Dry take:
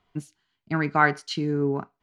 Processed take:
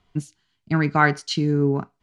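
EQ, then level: LPF 8500 Hz 12 dB/oct; low shelf 260 Hz +9.5 dB; high shelf 3900 Hz +10.5 dB; 0.0 dB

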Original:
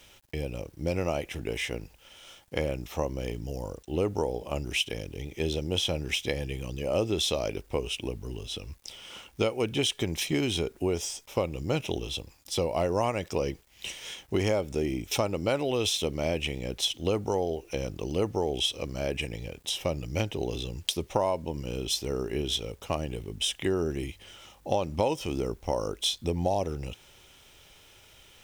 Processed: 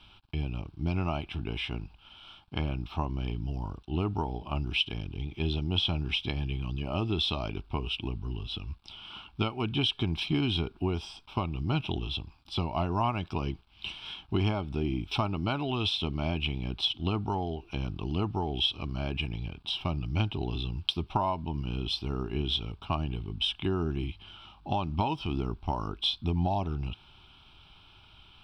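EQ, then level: air absorption 150 m; fixed phaser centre 1900 Hz, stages 6; +4.0 dB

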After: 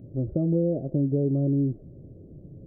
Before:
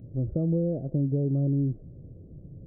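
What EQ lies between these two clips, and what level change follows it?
bell 430 Hz +8.5 dB 2.4 oct; notch 480 Hz, Q 12; -3.0 dB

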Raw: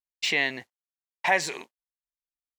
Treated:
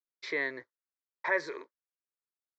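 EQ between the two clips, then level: BPF 180–6000 Hz; air absorption 220 m; fixed phaser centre 760 Hz, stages 6; 0.0 dB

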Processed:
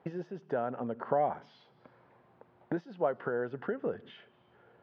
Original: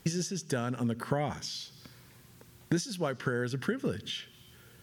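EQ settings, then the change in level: band-pass 710 Hz, Q 1.9; air absorption 340 m; +8.0 dB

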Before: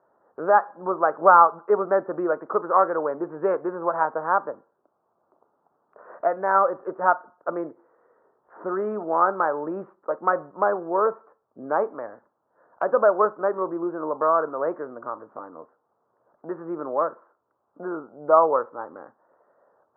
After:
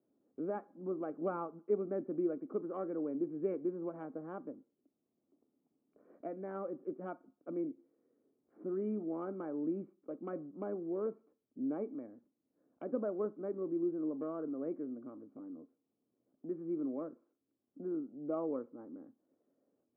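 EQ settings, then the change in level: vocal tract filter i; notch 940 Hz, Q 8.1; +3.5 dB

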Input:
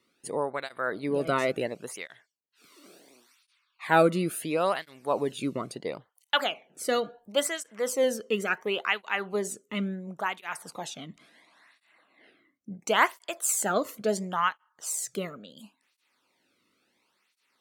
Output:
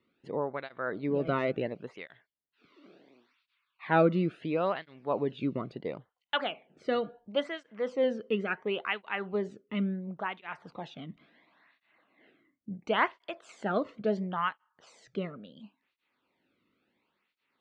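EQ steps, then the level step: LPF 3600 Hz 24 dB/oct; low shelf 370 Hz +8 dB; -5.5 dB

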